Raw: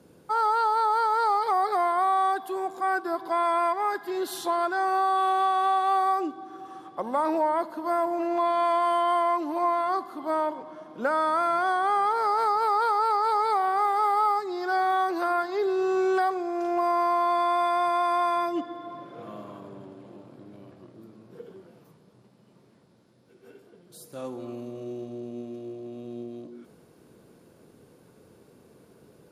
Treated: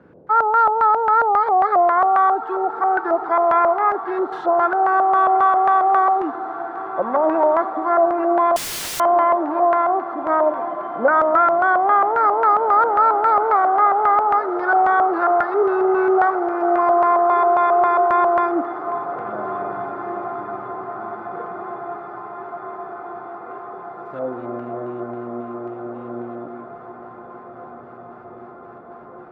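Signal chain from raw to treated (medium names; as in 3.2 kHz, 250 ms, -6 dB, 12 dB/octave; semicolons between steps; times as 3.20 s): LFO low-pass square 3.7 Hz 650–1600 Hz; echo that smears into a reverb 1931 ms, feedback 70%, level -14 dB; 8.56–9.00 s: integer overflow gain 28 dB; trim +5 dB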